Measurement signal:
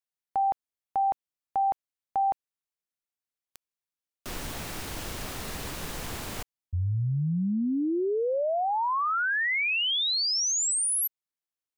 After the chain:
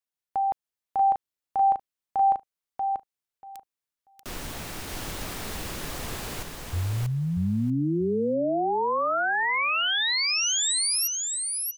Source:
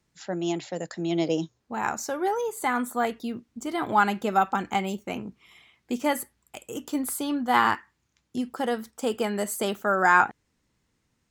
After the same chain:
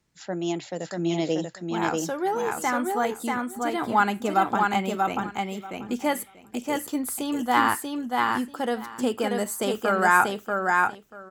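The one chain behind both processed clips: feedback echo 0.637 s, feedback 16%, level -3 dB

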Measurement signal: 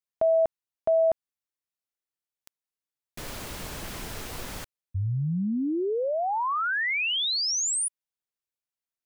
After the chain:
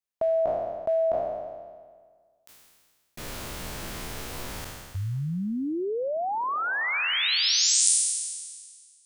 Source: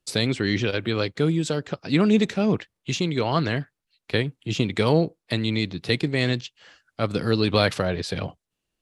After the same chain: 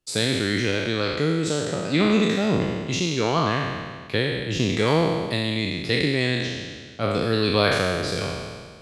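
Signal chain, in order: spectral trails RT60 1.69 s; gain -2.5 dB

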